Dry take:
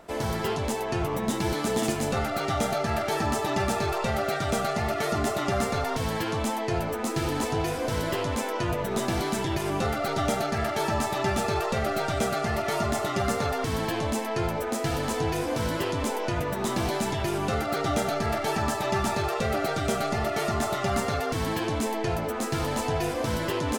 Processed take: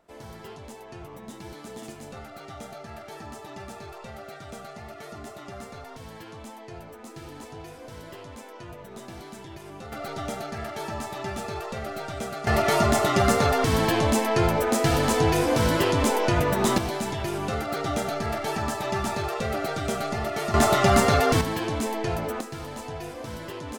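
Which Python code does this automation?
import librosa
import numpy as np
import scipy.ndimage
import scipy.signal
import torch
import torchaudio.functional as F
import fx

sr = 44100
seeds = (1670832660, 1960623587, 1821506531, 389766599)

y = fx.gain(x, sr, db=fx.steps((0.0, -14.0), (9.92, -6.5), (12.47, 6.0), (16.78, -1.5), (20.54, 8.0), (21.41, 0.0), (22.41, -8.5)))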